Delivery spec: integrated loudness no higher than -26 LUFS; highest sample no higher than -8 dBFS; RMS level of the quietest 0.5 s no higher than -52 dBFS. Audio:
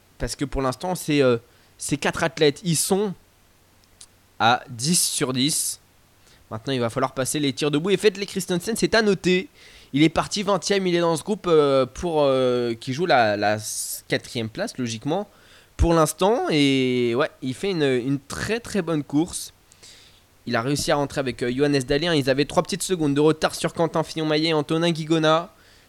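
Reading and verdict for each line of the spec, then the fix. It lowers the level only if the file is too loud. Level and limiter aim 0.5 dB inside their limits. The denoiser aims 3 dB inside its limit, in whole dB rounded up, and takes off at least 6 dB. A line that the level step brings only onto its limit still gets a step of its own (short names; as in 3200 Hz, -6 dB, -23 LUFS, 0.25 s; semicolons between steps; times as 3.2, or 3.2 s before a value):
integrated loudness -22.5 LUFS: fail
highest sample -6.0 dBFS: fail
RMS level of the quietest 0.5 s -57 dBFS: OK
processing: gain -4 dB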